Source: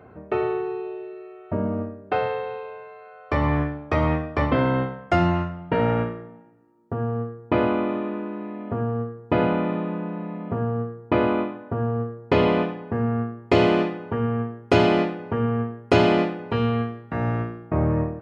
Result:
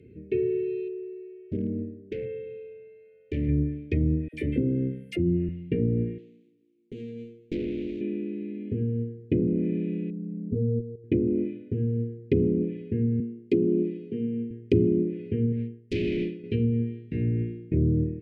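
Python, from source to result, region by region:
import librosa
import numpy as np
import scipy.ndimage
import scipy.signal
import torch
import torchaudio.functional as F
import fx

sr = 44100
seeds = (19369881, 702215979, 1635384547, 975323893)

y = fx.chain(x, sr, fx.lowpass(hz=1500.0, slope=12),
    fx.low_shelf(hz=160.0, db=-5.5),
    fx.clip_hard(threshold_db=-19.0), at=(0.88, 3.49))
y = fx.chain(y, sr, fx.highpass(hz=130.0, slope=6),
    fx.dispersion(late='lows', ms=57.0, hz=810.0),
    fx.resample_bad(factor=4, down='none', up='hold'), at=(4.28, 5.49))
y = fx.chain(y, sr, fx.median_filter(points=25),
    fx.highpass(hz=230.0, slope=12),
    fx.tube_stage(drive_db=19.0, bias=0.7), at=(6.18, 8.01))
y = fx.chain(y, sr, fx.spec_expand(power=2.0),
    fx.peak_eq(hz=860.0, db=12.5, octaves=2.0),
    fx.level_steps(step_db=11), at=(10.1, 11.04))
y = fx.chain(y, sr, fx.highpass(hz=160.0, slope=24),
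    fx.peak_eq(hz=1500.0, db=-9.0, octaves=2.2), at=(13.2, 14.51))
y = fx.chain(y, sr, fx.clip_hard(threshold_db=-22.0),
    fx.upward_expand(threshold_db=-43.0, expansion=1.5), at=(15.52, 16.44))
y = fx.high_shelf(y, sr, hz=4000.0, db=-7.5)
y = fx.env_lowpass_down(y, sr, base_hz=410.0, full_db=-16.0)
y = scipy.signal.sosfilt(scipy.signal.ellip(3, 1.0, 50, [410.0, 2300.0], 'bandstop', fs=sr, output='sos'), y)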